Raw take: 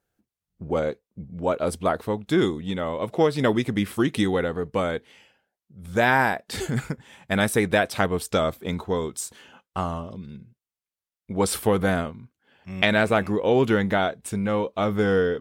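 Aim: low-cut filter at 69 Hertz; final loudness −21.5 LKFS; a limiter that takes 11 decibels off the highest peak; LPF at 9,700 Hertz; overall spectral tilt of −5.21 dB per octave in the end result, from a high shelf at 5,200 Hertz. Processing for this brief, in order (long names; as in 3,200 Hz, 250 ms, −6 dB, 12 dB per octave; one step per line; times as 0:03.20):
high-pass filter 69 Hz
low-pass filter 9,700 Hz
high-shelf EQ 5,200 Hz −3.5 dB
level +6 dB
brickwall limiter −9 dBFS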